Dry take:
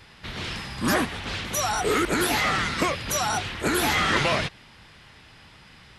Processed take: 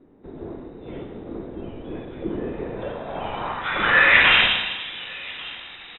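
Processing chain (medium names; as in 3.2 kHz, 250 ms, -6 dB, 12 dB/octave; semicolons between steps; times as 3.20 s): delay 1140 ms -23 dB; Schroeder reverb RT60 1.3 s, combs from 32 ms, DRR 3 dB; frequency inversion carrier 3.8 kHz; low-pass sweep 360 Hz -> 2.9 kHz, 2.50–4.53 s; trim +3.5 dB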